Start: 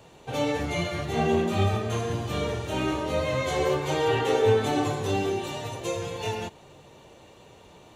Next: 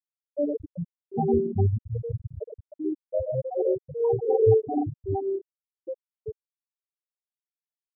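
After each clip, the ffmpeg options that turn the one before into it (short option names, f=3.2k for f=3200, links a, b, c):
-af "afftfilt=real='re*gte(hypot(re,im),0.316)':imag='im*gte(hypot(re,im),0.316)':win_size=1024:overlap=0.75,volume=3dB"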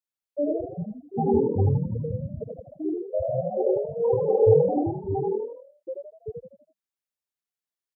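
-filter_complex "[0:a]asplit=6[a][b][c][d][e][f];[b]adelay=82,afreqshift=40,volume=-4dB[g];[c]adelay=164,afreqshift=80,volume=-11.3dB[h];[d]adelay=246,afreqshift=120,volume=-18.7dB[i];[e]adelay=328,afreqshift=160,volume=-26dB[j];[f]adelay=410,afreqshift=200,volume=-33.3dB[k];[a][g][h][i][j][k]amix=inputs=6:normalize=0"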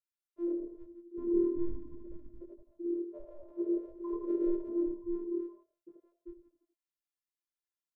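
-af "flanger=delay=19.5:depth=4.5:speed=0.43,afftfilt=real='hypot(re,im)*cos(PI*b)':imag='0':win_size=512:overlap=0.75,asuperstop=centerf=740:order=8:qfactor=2.7,volume=-1.5dB"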